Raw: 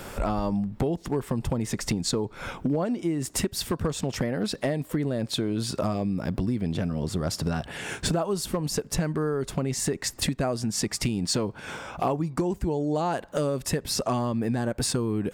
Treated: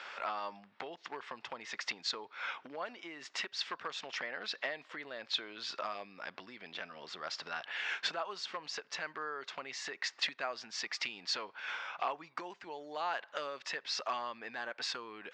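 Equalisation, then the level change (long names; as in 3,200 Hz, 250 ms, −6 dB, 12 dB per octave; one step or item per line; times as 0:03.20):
high-pass filter 1,500 Hz 12 dB per octave
Bessel low-pass filter 3,800 Hz, order 8
high-frequency loss of the air 100 metres
+3.0 dB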